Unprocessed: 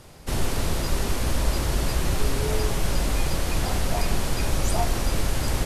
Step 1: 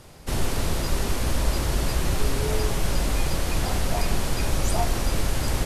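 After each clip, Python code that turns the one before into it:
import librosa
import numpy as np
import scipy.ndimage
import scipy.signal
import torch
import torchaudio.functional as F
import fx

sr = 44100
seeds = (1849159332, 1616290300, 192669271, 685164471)

y = x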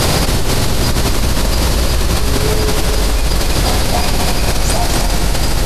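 y = fx.peak_eq(x, sr, hz=4400.0, db=4.5, octaves=0.63)
y = fx.echo_heads(y, sr, ms=84, heads='first and third', feedback_pct=75, wet_db=-9.0)
y = fx.env_flatten(y, sr, amount_pct=100)
y = F.gain(torch.from_numpy(y), 2.5).numpy()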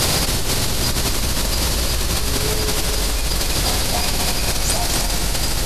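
y = fx.high_shelf(x, sr, hz=2300.0, db=8.0)
y = F.gain(torch.from_numpy(y), -7.5).numpy()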